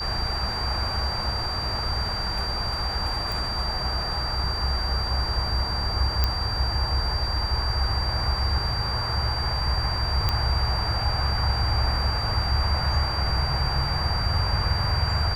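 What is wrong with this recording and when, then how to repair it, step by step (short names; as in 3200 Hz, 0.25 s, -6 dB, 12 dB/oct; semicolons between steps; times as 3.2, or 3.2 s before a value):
tone 4700 Hz -29 dBFS
3.32 pop
6.24 pop -8 dBFS
10.29 pop -9 dBFS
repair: de-click; notch 4700 Hz, Q 30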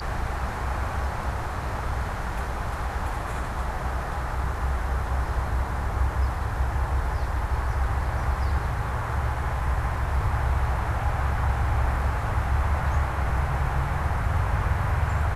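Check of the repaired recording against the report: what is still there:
6.24 pop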